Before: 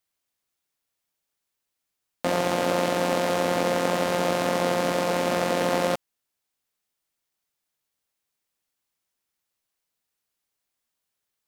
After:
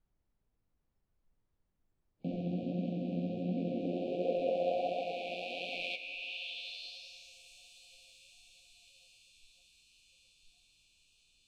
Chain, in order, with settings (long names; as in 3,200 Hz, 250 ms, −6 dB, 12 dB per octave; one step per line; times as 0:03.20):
flat-topped bell 3,100 Hz +12 dB 1.3 octaves
brick-wall band-stop 790–2,300 Hz
low-shelf EQ 150 Hz +10.5 dB
feedback delay with all-pass diffusion 937 ms, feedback 68%, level −12 dB
flanger 1.4 Hz, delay 3.7 ms, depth 8.5 ms, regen +35%
band-pass filter sweep 210 Hz → 7,600 Hz, 0:03.51–0:07.44
background noise brown −59 dBFS
noise reduction from a noise print of the clip's start 17 dB
level −1.5 dB